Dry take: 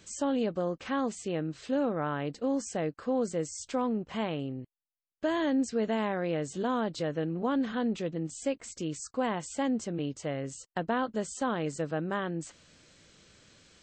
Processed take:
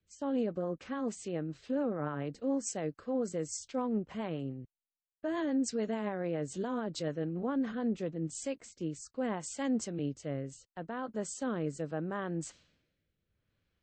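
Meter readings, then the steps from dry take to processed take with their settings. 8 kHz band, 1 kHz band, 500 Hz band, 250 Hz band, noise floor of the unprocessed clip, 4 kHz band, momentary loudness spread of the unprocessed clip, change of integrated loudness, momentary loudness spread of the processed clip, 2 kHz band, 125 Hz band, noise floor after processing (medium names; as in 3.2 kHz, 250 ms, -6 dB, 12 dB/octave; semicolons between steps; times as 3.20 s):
-1.0 dB, -7.5 dB, -4.0 dB, -3.0 dB, -85 dBFS, -6.0 dB, 6 LU, -3.5 dB, 7 LU, -7.0 dB, -2.5 dB, under -85 dBFS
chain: rotary cabinet horn 7 Hz, later 0.75 Hz, at 7.58 s; dynamic bell 3.3 kHz, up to -4 dB, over -54 dBFS, Q 1.3; peak limiter -25.5 dBFS, peak gain reduction 6.5 dB; level-controlled noise filter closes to 1.9 kHz, open at -33 dBFS; three bands expanded up and down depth 70%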